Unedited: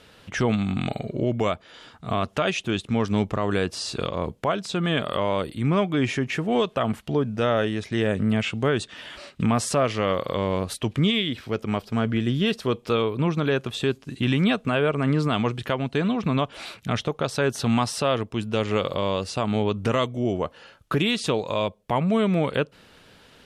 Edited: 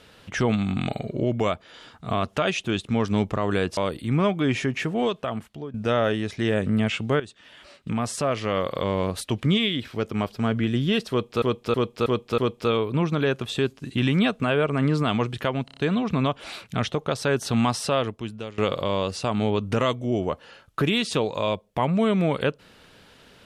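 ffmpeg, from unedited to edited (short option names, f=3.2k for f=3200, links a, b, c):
-filter_complex "[0:a]asplit=13[a][b][c][d][e][f][g][h][i][j][k][l][m];[a]atrim=end=3.772[n];[b]atrim=start=5.298:end=7.27,asetpts=PTS-STARTPTS,afade=t=out:st=1.052:d=0.92:silence=0.158489[o];[c]atrim=start=7.27:end=8.73,asetpts=PTS-STARTPTS,afade=t=in:d=0.004:c=hsin:silence=0.158489,afade=t=out:st=1.456:d=0.004:c=hsin:silence=0.188365[p];[d]atrim=start=8.73:end=12.952,asetpts=PTS-STARTPTS,afade=t=in:d=1.64:silence=0.188365[q];[e]atrim=start=12.628:end=12.952[r];[f]atrim=start=12.628:end=12.952[s];[g]atrim=start=12.628:end=12.952[t];[h]atrim=start=12.628:end=15.932[u];[i]atrim=start=15.898:end=15.932[v];[j]atrim=start=15.898:end=15.932[w];[k]atrim=start=15.898:end=15.932[x];[l]atrim=start=15.898:end=18.71,asetpts=PTS-STARTPTS,afade=t=out:st=2.162:d=0.65:silence=0.112202[y];[m]atrim=start=18.71,asetpts=PTS-STARTPTS,afade=t=in:d=0.004:c=hsin:silence=0.112202[z];[o][p][q]concat=n=3:v=0:a=1[aa];[n][aa]acrossfade=d=0.004:c1=hsin:c2=hsin[ab];[ab][r]acrossfade=d=0.004:c1=hsin:c2=hsin[ac];[ac][s]acrossfade=d=0.004:c1=hsin:c2=hsin[ad];[ad][t]acrossfade=d=0.004:c1=hsin:c2=hsin[ae];[ae][u]acrossfade=d=0.004:c1=hsin:c2=hsin[af];[af][v]acrossfade=d=0.004:c1=hsin:c2=hsin[ag];[ag][w]acrossfade=d=0.004:c1=hsin:c2=hsin[ah];[ah][x]acrossfade=d=0.004:c1=hsin:c2=hsin[ai];[y][z]concat=n=2:v=0:a=1[aj];[ai][aj]acrossfade=d=0.004:c1=hsin:c2=hsin"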